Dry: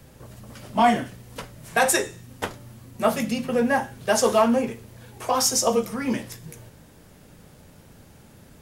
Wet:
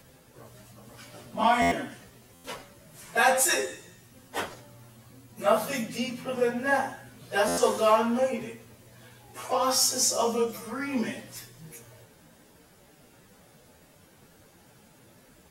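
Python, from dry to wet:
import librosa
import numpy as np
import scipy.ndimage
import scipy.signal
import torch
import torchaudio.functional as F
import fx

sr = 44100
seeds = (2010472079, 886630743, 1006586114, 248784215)

y = fx.low_shelf(x, sr, hz=190.0, db=-10.5)
y = fx.stretch_vocoder_free(y, sr, factor=1.8)
y = fx.buffer_glitch(y, sr, at_s=(1.61, 2.34, 7.47), block=512, repeats=8)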